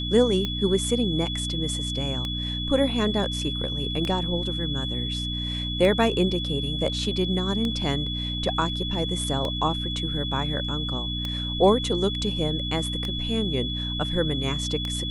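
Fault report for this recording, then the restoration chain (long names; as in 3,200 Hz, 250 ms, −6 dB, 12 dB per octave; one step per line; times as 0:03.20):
mains hum 60 Hz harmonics 5 −31 dBFS
scratch tick 33 1/3 rpm −15 dBFS
whistle 3,400 Hz −30 dBFS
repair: click removal
hum removal 60 Hz, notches 5
notch filter 3,400 Hz, Q 30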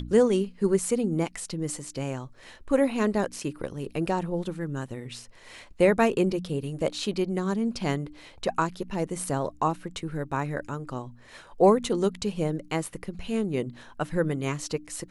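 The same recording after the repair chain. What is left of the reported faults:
none of them is left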